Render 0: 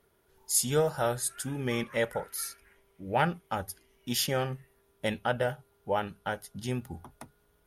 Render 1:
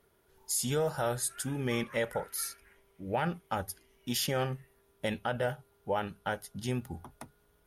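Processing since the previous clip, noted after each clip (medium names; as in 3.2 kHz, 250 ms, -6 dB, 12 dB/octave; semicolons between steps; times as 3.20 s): peak limiter -21 dBFS, peak gain reduction 8 dB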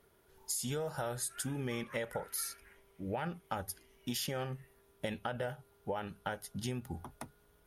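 compression, threshold -35 dBFS, peak gain reduction 9 dB; trim +1 dB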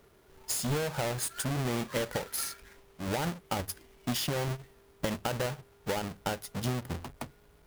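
square wave that keeps the level; trim +1.5 dB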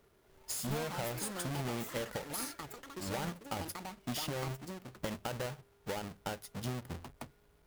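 ever faster or slower copies 246 ms, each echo +7 st, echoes 3, each echo -6 dB; trim -6.5 dB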